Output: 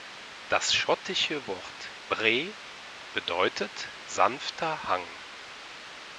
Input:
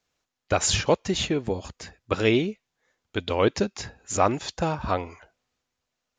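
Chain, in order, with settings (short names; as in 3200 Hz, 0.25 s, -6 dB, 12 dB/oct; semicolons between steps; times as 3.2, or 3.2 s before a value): added noise pink -40 dBFS; band-pass 2900 Hz, Q 0.57; air absorption 110 m; gain +5 dB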